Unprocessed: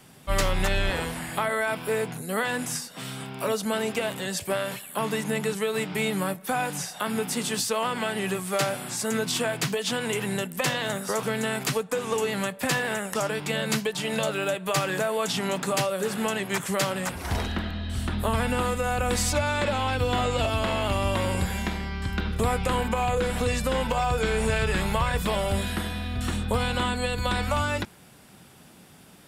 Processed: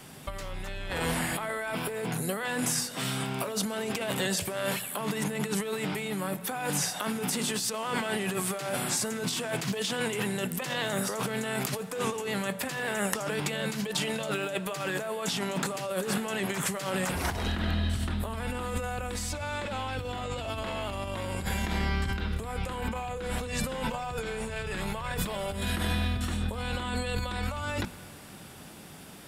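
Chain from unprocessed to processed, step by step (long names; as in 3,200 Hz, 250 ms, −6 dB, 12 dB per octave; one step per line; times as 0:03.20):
mains-hum notches 60/120/180/240 Hz
compressor whose output falls as the input rises −32 dBFS, ratio −1
convolution reverb RT60 3.6 s, pre-delay 83 ms, DRR 18.5 dB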